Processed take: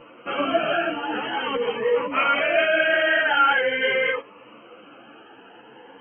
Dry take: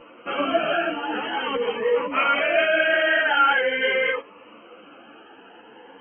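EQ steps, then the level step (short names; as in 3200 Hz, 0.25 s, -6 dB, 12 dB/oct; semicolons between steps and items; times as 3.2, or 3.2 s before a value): bell 130 Hz +10.5 dB 0.26 oct; 0.0 dB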